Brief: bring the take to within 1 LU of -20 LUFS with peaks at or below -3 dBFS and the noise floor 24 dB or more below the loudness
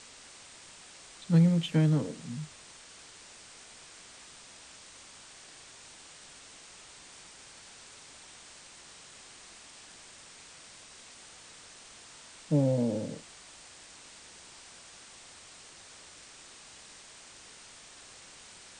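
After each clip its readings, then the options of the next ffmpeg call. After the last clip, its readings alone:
noise floor -52 dBFS; noise floor target -53 dBFS; loudness -28.5 LUFS; peak level -14.0 dBFS; loudness target -20.0 LUFS
-> -af "afftdn=nr=6:nf=-52"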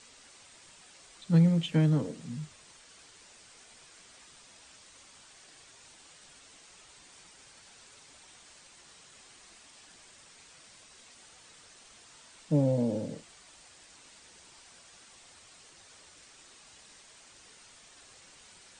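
noise floor -56 dBFS; loudness -28.5 LUFS; peak level -14.0 dBFS; loudness target -20.0 LUFS
-> -af "volume=2.66"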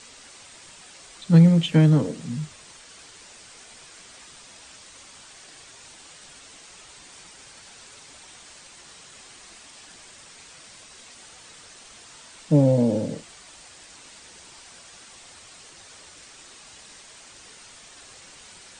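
loudness -20.0 LUFS; peak level -5.5 dBFS; noise floor -48 dBFS

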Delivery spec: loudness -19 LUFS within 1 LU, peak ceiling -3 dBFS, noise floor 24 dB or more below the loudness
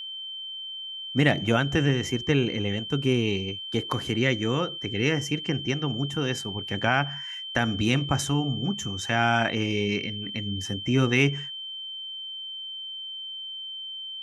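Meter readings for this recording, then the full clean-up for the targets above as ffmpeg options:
steady tone 3.1 kHz; tone level -34 dBFS; loudness -27.0 LUFS; peak level -6.5 dBFS; loudness target -19.0 LUFS
-> -af "bandreject=f=3100:w=30"
-af "volume=2.51,alimiter=limit=0.708:level=0:latency=1"

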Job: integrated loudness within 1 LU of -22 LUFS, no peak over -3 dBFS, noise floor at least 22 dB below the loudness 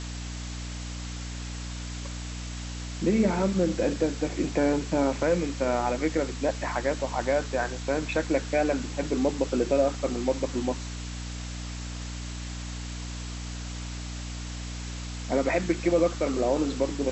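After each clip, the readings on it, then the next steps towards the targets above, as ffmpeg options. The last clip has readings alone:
hum 60 Hz; highest harmonic 300 Hz; hum level -34 dBFS; noise floor -36 dBFS; noise floor target -51 dBFS; loudness -29.0 LUFS; peak level -12.0 dBFS; loudness target -22.0 LUFS
-> -af "bandreject=f=60:t=h:w=6,bandreject=f=120:t=h:w=6,bandreject=f=180:t=h:w=6,bandreject=f=240:t=h:w=6,bandreject=f=300:t=h:w=6"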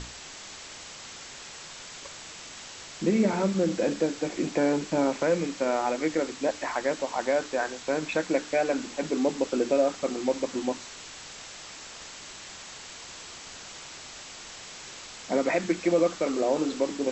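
hum not found; noise floor -44 dBFS; noise floor target -50 dBFS
-> -af "afftdn=nr=6:nf=-44"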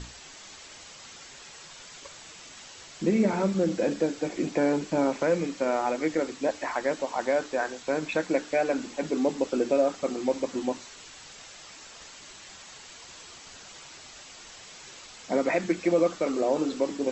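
noise floor -47 dBFS; noise floor target -50 dBFS
-> -af "afftdn=nr=6:nf=-47"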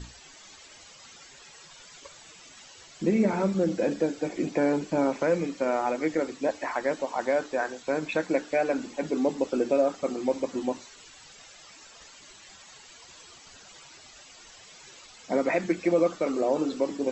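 noise floor -51 dBFS; loudness -27.5 LUFS; peak level -12.0 dBFS; loudness target -22.0 LUFS
-> -af "volume=1.88"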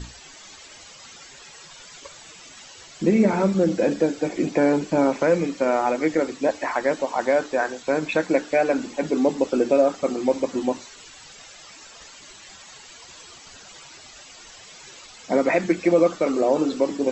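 loudness -22.0 LUFS; peak level -6.5 dBFS; noise floor -45 dBFS

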